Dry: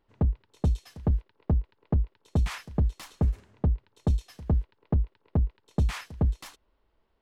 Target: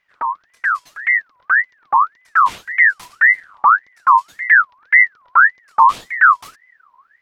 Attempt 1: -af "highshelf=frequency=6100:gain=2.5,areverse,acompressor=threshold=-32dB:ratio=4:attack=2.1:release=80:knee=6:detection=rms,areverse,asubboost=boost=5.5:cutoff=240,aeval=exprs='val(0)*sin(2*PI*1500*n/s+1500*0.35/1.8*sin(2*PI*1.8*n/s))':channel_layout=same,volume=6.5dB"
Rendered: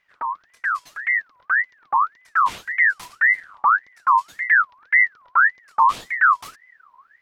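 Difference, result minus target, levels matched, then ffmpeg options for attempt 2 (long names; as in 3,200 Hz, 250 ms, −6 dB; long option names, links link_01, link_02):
downward compressor: peak gain reduction +5.5 dB
-af "highshelf=frequency=6100:gain=2.5,areverse,acompressor=threshold=-24.5dB:ratio=4:attack=2.1:release=80:knee=6:detection=rms,areverse,asubboost=boost=5.5:cutoff=240,aeval=exprs='val(0)*sin(2*PI*1500*n/s+1500*0.35/1.8*sin(2*PI*1.8*n/s))':channel_layout=same,volume=6.5dB"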